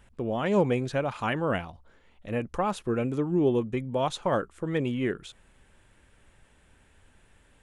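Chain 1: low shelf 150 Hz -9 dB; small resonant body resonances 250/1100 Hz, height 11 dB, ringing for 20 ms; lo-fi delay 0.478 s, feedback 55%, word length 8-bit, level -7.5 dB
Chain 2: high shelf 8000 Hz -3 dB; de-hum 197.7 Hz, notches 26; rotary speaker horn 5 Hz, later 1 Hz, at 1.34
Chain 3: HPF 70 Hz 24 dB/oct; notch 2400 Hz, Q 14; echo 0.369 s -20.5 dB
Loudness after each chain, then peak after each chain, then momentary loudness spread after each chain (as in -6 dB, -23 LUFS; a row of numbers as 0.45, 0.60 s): -24.0, -30.5, -28.5 LUFS; -7.5, -14.0, -12.0 dBFS; 16, 10, 9 LU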